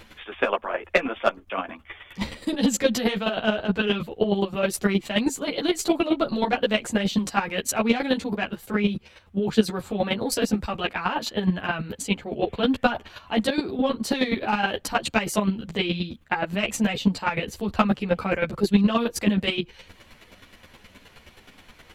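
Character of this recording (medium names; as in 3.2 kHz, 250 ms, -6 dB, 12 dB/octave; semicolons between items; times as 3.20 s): chopped level 9.5 Hz, depth 65%, duty 15%; a shimmering, thickened sound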